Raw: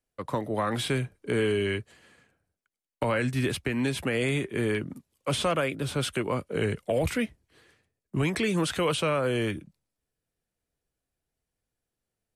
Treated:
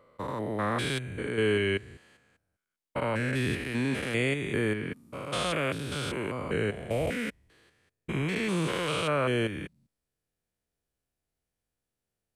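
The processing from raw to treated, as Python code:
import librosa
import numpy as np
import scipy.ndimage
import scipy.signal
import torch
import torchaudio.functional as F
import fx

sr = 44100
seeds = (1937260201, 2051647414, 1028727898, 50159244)

y = fx.spec_steps(x, sr, hold_ms=200)
y = fx.dynamic_eq(y, sr, hz=1700.0, q=0.77, threshold_db=-48.0, ratio=4.0, max_db=4)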